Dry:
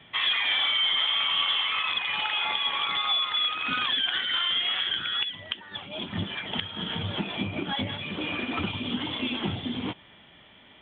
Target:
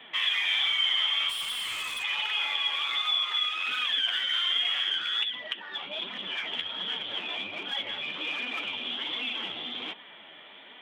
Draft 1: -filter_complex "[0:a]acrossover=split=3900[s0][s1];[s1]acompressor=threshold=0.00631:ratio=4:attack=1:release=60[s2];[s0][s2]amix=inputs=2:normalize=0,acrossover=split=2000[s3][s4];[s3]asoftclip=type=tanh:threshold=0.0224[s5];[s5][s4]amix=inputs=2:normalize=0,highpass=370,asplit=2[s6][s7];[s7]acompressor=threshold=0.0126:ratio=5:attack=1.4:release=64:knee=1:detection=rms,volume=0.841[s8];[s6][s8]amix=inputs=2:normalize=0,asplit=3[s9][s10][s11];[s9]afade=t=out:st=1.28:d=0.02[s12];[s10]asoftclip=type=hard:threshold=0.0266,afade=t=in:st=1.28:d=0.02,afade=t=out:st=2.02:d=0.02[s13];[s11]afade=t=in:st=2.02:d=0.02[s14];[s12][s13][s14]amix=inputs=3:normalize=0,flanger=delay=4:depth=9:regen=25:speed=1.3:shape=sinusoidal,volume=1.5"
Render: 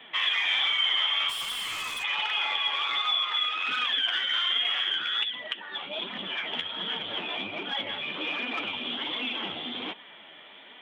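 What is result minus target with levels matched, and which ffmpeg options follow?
saturation: distortion -5 dB
-filter_complex "[0:a]acrossover=split=3900[s0][s1];[s1]acompressor=threshold=0.00631:ratio=4:attack=1:release=60[s2];[s0][s2]amix=inputs=2:normalize=0,acrossover=split=2000[s3][s4];[s3]asoftclip=type=tanh:threshold=0.00794[s5];[s5][s4]amix=inputs=2:normalize=0,highpass=370,asplit=2[s6][s7];[s7]acompressor=threshold=0.0126:ratio=5:attack=1.4:release=64:knee=1:detection=rms,volume=0.841[s8];[s6][s8]amix=inputs=2:normalize=0,asplit=3[s9][s10][s11];[s9]afade=t=out:st=1.28:d=0.02[s12];[s10]asoftclip=type=hard:threshold=0.0266,afade=t=in:st=1.28:d=0.02,afade=t=out:st=2.02:d=0.02[s13];[s11]afade=t=in:st=2.02:d=0.02[s14];[s12][s13][s14]amix=inputs=3:normalize=0,flanger=delay=4:depth=9:regen=25:speed=1.3:shape=sinusoidal,volume=1.5"

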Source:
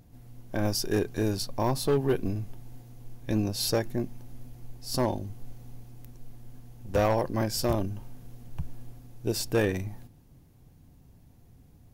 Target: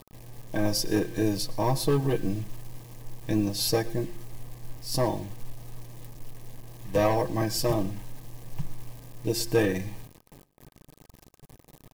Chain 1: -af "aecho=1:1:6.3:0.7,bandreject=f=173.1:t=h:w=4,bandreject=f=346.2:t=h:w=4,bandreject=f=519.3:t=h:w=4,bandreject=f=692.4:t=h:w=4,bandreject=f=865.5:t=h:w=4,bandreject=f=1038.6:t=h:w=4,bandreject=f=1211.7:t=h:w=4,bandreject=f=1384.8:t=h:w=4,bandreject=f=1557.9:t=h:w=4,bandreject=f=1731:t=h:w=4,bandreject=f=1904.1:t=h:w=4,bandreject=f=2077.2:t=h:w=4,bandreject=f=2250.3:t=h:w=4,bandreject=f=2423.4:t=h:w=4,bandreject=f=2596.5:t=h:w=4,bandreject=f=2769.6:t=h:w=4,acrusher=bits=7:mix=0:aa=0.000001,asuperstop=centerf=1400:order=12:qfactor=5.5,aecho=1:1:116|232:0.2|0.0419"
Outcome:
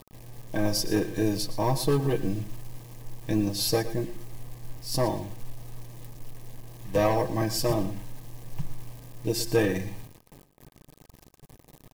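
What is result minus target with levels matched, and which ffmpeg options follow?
echo-to-direct +6.5 dB
-af "aecho=1:1:6.3:0.7,bandreject=f=173.1:t=h:w=4,bandreject=f=346.2:t=h:w=4,bandreject=f=519.3:t=h:w=4,bandreject=f=692.4:t=h:w=4,bandreject=f=865.5:t=h:w=4,bandreject=f=1038.6:t=h:w=4,bandreject=f=1211.7:t=h:w=4,bandreject=f=1384.8:t=h:w=4,bandreject=f=1557.9:t=h:w=4,bandreject=f=1731:t=h:w=4,bandreject=f=1904.1:t=h:w=4,bandreject=f=2077.2:t=h:w=4,bandreject=f=2250.3:t=h:w=4,bandreject=f=2423.4:t=h:w=4,bandreject=f=2596.5:t=h:w=4,bandreject=f=2769.6:t=h:w=4,acrusher=bits=7:mix=0:aa=0.000001,asuperstop=centerf=1400:order=12:qfactor=5.5,aecho=1:1:116|232:0.0944|0.0198"

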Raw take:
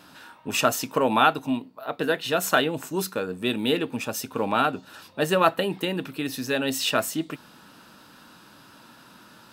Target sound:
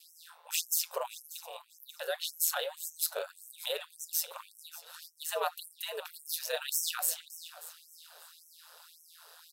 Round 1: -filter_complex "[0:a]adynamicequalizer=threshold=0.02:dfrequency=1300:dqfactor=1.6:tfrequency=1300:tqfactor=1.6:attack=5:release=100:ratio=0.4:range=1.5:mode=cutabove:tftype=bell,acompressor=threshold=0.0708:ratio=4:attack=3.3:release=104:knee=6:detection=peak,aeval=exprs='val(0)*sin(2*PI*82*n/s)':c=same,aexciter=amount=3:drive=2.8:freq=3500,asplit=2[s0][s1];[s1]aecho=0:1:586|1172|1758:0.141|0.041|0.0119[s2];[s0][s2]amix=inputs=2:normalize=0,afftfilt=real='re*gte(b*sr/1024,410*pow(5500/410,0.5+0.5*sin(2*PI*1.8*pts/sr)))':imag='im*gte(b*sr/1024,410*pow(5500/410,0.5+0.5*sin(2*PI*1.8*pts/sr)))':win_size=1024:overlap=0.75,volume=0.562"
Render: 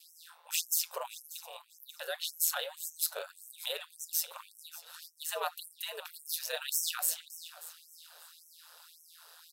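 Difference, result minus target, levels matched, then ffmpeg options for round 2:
500 Hz band -4.5 dB
-filter_complex "[0:a]adynamicequalizer=threshold=0.02:dfrequency=1300:dqfactor=1.6:tfrequency=1300:tqfactor=1.6:attack=5:release=100:ratio=0.4:range=1.5:mode=cutabove:tftype=bell,acompressor=threshold=0.0708:ratio=4:attack=3.3:release=104:knee=6:detection=peak,lowshelf=f=490:g=9.5,aeval=exprs='val(0)*sin(2*PI*82*n/s)':c=same,aexciter=amount=3:drive=2.8:freq=3500,asplit=2[s0][s1];[s1]aecho=0:1:586|1172|1758:0.141|0.041|0.0119[s2];[s0][s2]amix=inputs=2:normalize=0,afftfilt=real='re*gte(b*sr/1024,410*pow(5500/410,0.5+0.5*sin(2*PI*1.8*pts/sr)))':imag='im*gte(b*sr/1024,410*pow(5500/410,0.5+0.5*sin(2*PI*1.8*pts/sr)))':win_size=1024:overlap=0.75,volume=0.562"

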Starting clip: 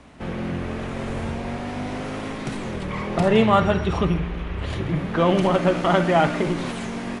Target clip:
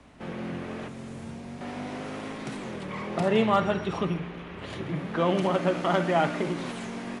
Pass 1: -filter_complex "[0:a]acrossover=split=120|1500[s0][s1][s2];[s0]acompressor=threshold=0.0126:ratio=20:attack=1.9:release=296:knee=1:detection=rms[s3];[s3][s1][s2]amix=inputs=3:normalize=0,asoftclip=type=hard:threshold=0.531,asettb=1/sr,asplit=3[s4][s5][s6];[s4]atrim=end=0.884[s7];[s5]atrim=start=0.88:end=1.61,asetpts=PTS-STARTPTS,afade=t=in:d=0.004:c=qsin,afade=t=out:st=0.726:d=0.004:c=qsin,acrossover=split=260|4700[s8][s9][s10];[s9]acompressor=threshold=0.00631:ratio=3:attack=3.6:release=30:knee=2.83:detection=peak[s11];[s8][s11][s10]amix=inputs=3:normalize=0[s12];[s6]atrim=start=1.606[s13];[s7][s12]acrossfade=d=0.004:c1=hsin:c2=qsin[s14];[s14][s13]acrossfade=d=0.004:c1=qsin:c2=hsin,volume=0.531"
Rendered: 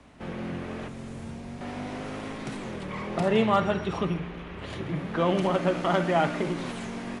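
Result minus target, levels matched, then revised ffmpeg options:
compression: peak gain reduction -10 dB
-filter_complex "[0:a]acrossover=split=120|1500[s0][s1][s2];[s0]acompressor=threshold=0.00376:ratio=20:attack=1.9:release=296:knee=1:detection=rms[s3];[s3][s1][s2]amix=inputs=3:normalize=0,asoftclip=type=hard:threshold=0.531,asettb=1/sr,asplit=3[s4][s5][s6];[s4]atrim=end=0.884[s7];[s5]atrim=start=0.88:end=1.61,asetpts=PTS-STARTPTS,afade=t=in:d=0.004:c=qsin,afade=t=out:st=0.726:d=0.004:c=qsin,acrossover=split=260|4700[s8][s9][s10];[s9]acompressor=threshold=0.00631:ratio=3:attack=3.6:release=30:knee=2.83:detection=peak[s11];[s8][s11][s10]amix=inputs=3:normalize=0[s12];[s6]atrim=start=1.606[s13];[s7][s12]acrossfade=d=0.004:c1=hsin:c2=qsin[s14];[s14][s13]acrossfade=d=0.004:c1=qsin:c2=hsin,volume=0.531"

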